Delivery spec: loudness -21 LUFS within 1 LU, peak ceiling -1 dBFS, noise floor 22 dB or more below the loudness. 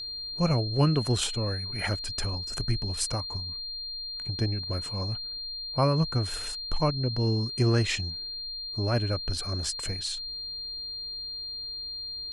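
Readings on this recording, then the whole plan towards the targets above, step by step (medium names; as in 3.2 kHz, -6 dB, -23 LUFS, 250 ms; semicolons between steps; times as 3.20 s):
steady tone 4.2 kHz; tone level -34 dBFS; loudness -29.5 LUFS; peak level -12.0 dBFS; loudness target -21.0 LUFS
-> band-stop 4.2 kHz, Q 30; trim +8.5 dB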